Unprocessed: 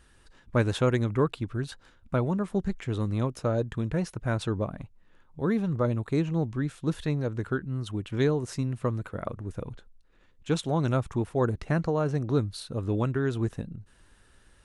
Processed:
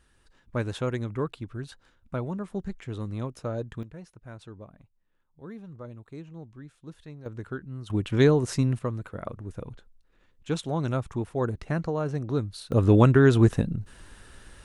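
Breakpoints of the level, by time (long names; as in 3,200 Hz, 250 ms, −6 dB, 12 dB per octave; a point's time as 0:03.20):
−5 dB
from 0:03.83 −15.5 dB
from 0:07.26 −6 dB
from 0:07.90 +5.5 dB
from 0:08.79 −2 dB
from 0:12.72 +10 dB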